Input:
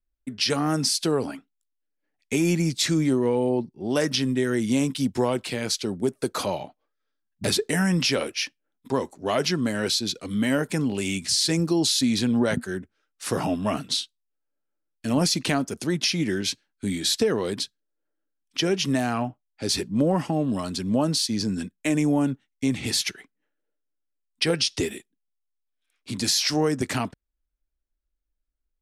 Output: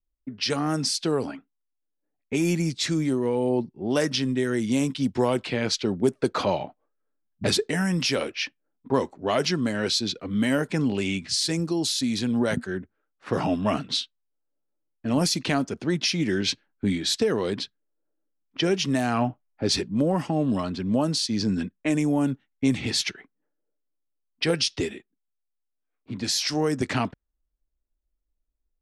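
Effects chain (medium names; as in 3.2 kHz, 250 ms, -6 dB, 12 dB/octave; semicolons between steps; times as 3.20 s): level-controlled noise filter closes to 870 Hz, open at -18 dBFS; gain riding 0.5 s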